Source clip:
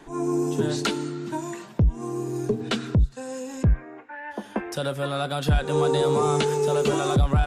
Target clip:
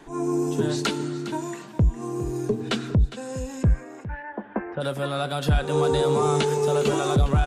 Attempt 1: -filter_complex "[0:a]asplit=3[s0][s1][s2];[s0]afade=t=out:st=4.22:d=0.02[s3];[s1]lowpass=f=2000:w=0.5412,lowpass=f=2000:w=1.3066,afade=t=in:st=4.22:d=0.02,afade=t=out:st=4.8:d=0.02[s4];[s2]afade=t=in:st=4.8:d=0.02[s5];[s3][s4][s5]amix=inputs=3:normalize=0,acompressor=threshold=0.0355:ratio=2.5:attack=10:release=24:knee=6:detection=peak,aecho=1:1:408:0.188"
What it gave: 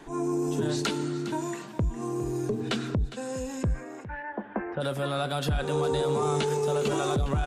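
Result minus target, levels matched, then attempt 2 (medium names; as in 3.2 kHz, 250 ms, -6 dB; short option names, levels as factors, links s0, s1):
compression: peak gain reduction +9 dB
-filter_complex "[0:a]asplit=3[s0][s1][s2];[s0]afade=t=out:st=4.22:d=0.02[s3];[s1]lowpass=f=2000:w=0.5412,lowpass=f=2000:w=1.3066,afade=t=in:st=4.22:d=0.02,afade=t=out:st=4.8:d=0.02[s4];[s2]afade=t=in:st=4.8:d=0.02[s5];[s3][s4][s5]amix=inputs=3:normalize=0,aecho=1:1:408:0.188"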